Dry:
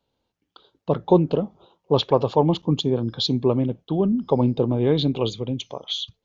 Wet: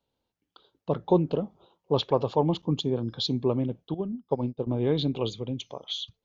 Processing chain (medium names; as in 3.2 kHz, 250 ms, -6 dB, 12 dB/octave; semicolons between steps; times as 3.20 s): 3.94–4.67 s: upward expansion 2.5:1, over -33 dBFS; trim -5.5 dB